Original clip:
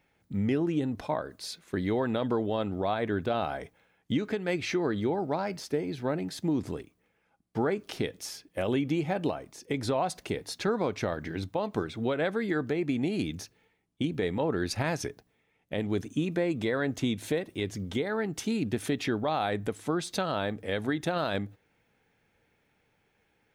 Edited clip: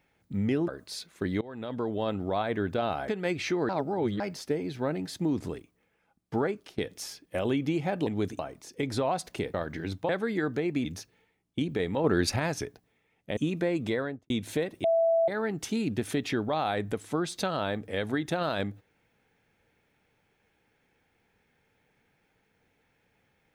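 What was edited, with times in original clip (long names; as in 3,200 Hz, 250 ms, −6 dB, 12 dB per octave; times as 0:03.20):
0:00.68–0:01.20: remove
0:01.93–0:02.58: fade in, from −21.5 dB
0:03.60–0:04.31: remove
0:04.92–0:05.43: reverse
0:07.67–0:08.01: fade out, to −21.5 dB
0:10.45–0:11.05: remove
0:11.60–0:12.22: remove
0:12.98–0:13.28: remove
0:14.47–0:14.79: clip gain +5 dB
0:15.80–0:16.12: move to 0:09.30
0:16.66–0:17.05: fade out and dull
0:17.59–0:18.03: beep over 662 Hz −20.5 dBFS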